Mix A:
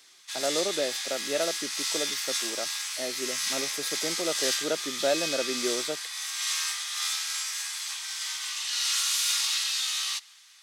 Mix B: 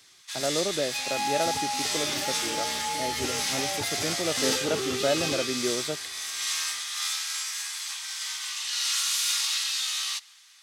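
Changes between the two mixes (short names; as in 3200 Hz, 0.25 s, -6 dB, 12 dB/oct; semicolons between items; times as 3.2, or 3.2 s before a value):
second sound: unmuted; master: remove HPF 270 Hz 12 dB/oct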